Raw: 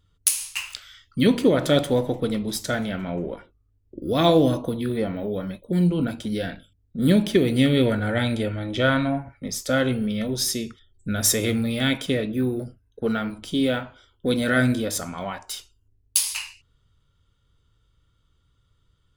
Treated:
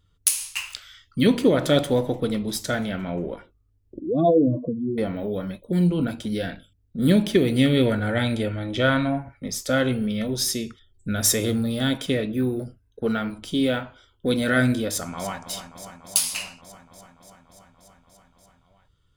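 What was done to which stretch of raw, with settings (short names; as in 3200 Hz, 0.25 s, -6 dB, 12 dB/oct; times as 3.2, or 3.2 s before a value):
3.99–4.98 spectral contrast raised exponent 2.8
11.43–12.01 bell 2300 Hz -12.5 dB 0.48 oct
14.88–15.4 echo throw 0.29 s, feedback 80%, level -10.5 dB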